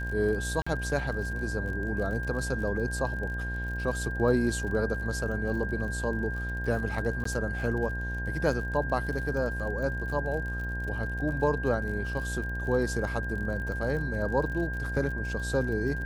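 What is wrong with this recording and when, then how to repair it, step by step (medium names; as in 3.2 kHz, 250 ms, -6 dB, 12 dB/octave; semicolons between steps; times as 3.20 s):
buzz 60 Hz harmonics 18 -34 dBFS
crackle 48 per s -37 dBFS
whine 1.6 kHz -35 dBFS
0.62–0.67 s: dropout 45 ms
7.24–7.25 s: dropout 14 ms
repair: de-click; band-stop 1.6 kHz, Q 30; de-hum 60 Hz, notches 18; interpolate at 0.62 s, 45 ms; interpolate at 7.24 s, 14 ms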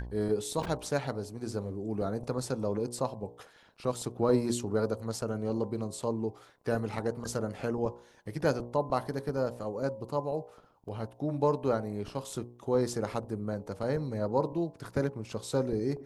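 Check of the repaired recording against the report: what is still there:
nothing left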